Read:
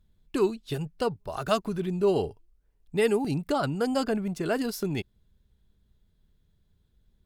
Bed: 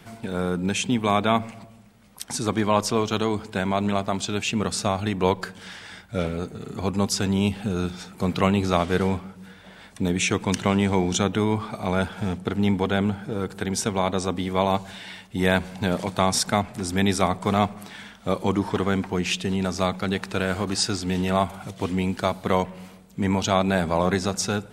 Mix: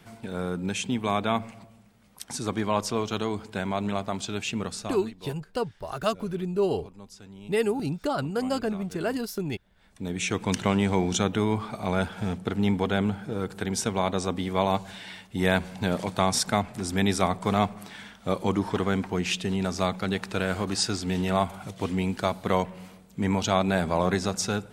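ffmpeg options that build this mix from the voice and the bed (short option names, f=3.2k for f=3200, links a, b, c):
-filter_complex "[0:a]adelay=4550,volume=-1dB[a];[1:a]volume=16dB,afade=t=out:st=4.52:d=0.62:silence=0.11885,afade=t=in:st=9.74:d=0.77:silence=0.0891251[b];[a][b]amix=inputs=2:normalize=0"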